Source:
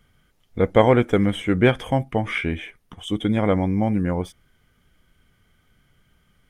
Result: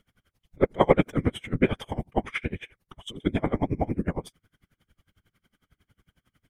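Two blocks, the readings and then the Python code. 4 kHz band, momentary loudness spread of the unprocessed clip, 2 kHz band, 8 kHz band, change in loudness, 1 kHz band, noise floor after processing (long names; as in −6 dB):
−7.0 dB, 16 LU, −7.0 dB, can't be measured, −6.0 dB, −5.0 dB, below −85 dBFS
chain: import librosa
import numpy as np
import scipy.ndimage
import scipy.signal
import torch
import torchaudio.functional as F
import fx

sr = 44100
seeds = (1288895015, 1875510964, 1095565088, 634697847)

y = fx.whisperise(x, sr, seeds[0])
y = y * 10.0 ** (-28 * (0.5 - 0.5 * np.cos(2.0 * np.pi * 11.0 * np.arange(len(y)) / sr)) / 20.0)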